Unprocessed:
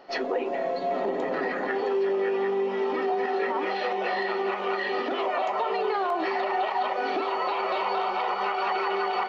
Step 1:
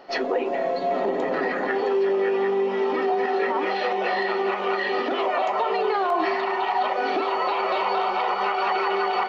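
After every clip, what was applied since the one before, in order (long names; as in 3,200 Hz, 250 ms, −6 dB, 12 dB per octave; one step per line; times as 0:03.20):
healed spectral selection 0:06.16–0:06.70, 440–1,100 Hz both
level +3.5 dB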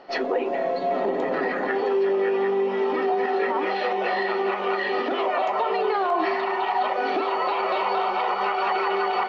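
high-frequency loss of the air 61 metres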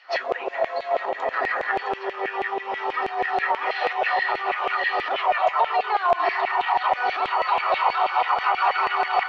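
auto-filter high-pass saw down 6.2 Hz 560–2,500 Hz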